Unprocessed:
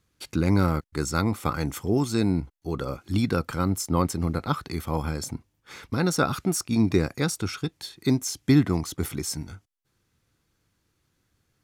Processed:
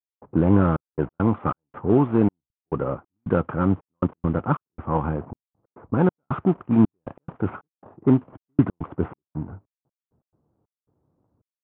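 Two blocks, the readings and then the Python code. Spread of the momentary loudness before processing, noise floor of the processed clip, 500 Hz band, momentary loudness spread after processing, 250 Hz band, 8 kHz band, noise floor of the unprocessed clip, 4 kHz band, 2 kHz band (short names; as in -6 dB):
10 LU, under -85 dBFS, +3.5 dB, 13 LU, +3.0 dB, under -40 dB, -74 dBFS, under -20 dB, -4.5 dB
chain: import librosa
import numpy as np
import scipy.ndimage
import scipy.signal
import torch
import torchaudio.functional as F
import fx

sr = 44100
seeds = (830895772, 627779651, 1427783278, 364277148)

y = fx.cvsd(x, sr, bps=16000)
y = scipy.signal.sosfilt(scipy.signal.butter(2, 98.0, 'highpass', fs=sr, output='sos'), y)
y = fx.env_lowpass(y, sr, base_hz=580.0, full_db=-19.5)
y = fx.step_gate(y, sr, bpm=138, pattern='..xxxxx..x.xxx', floor_db=-60.0, edge_ms=4.5)
y = fx.high_shelf_res(y, sr, hz=1500.0, db=-11.0, q=1.5)
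y = y * 10.0 ** (6.0 / 20.0)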